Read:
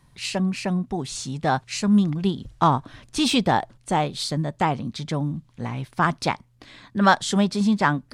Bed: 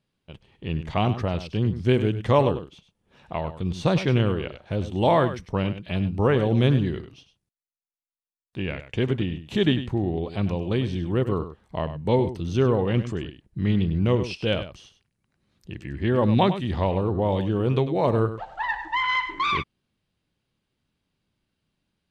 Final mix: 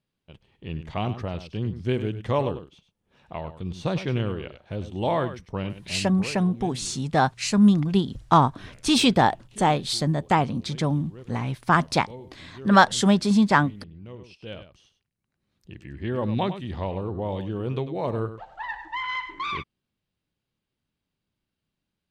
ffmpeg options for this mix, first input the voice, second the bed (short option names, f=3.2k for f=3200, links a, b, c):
-filter_complex "[0:a]adelay=5700,volume=1.5dB[a];[1:a]volume=9.5dB,afade=t=out:st=5.66:d=0.7:silence=0.16788,afade=t=in:st=14.13:d=1.43:silence=0.188365[b];[a][b]amix=inputs=2:normalize=0"